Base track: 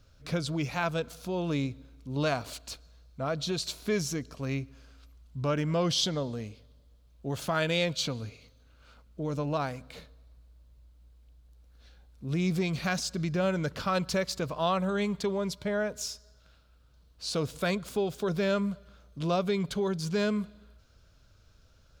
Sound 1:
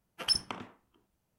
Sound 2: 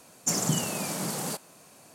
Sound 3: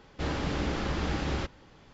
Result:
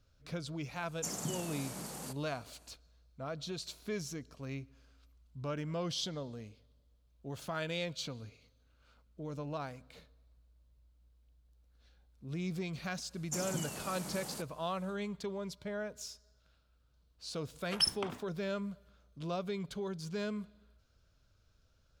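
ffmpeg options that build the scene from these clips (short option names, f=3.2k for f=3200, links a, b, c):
-filter_complex "[2:a]asplit=2[a][b];[0:a]volume=-9.5dB[c];[a]aresample=32000,aresample=44100,atrim=end=1.94,asetpts=PTS-STARTPTS,volume=-12dB,afade=t=in:d=0.004:c=hsin,afade=t=out:st=1.936:d=0.004:c=hsin,adelay=760[d];[b]atrim=end=1.94,asetpts=PTS-STARTPTS,volume=-12dB,afade=t=in:d=0.1,afade=t=out:st=1.84:d=0.1,adelay=13050[e];[1:a]atrim=end=1.38,asetpts=PTS-STARTPTS,volume=-1.5dB,afade=t=in:d=0.004:c=hsin,afade=t=out:st=1.376:d=0.004:c=hsin,adelay=17520[f];[c][d][e][f]amix=inputs=4:normalize=0"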